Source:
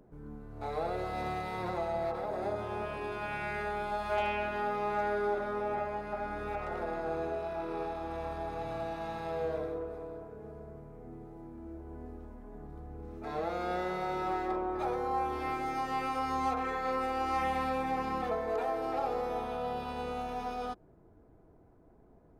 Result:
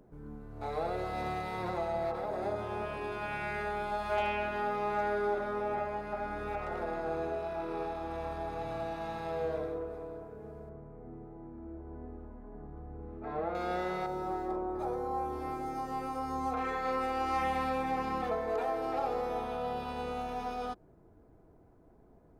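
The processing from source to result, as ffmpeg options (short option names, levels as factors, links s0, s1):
-filter_complex "[0:a]asettb=1/sr,asplit=3[s0][s1][s2];[s0]atrim=end=10.694[s3];[s1]atrim=start=10.69:end=13.55,asetpts=PTS-STARTPTS,afade=t=in:d=0.004:c=qsin,afade=t=out:st=2.856:d=0.004:c=qsin,lowpass=1800[s4];[s2]atrim=start=13.546[s5];[s3][s4]acrossfade=d=0.004:c1=hsin:c2=qsin[s6];[s6][s5]acrossfade=d=0.004:c1=qsin:c2=hsin,asettb=1/sr,asplit=3[s7][s8][s9];[s7]atrim=end=14.064[s10];[s8]atrim=start=14.06:end=16.54,asetpts=PTS-STARTPTS,afade=t=in:d=0.004:c=qsin,afade=t=out:st=2.476:d=0.004:c=qsin,equalizer=f=2600:w=0.67:g=-12.5[s11];[s9]atrim=start=16.536[s12];[s10][s11]acrossfade=d=0.004:c1=hsin:c2=qsin[s13];[s13][s12]acrossfade=d=0.004:c1=qsin:c2=hsin"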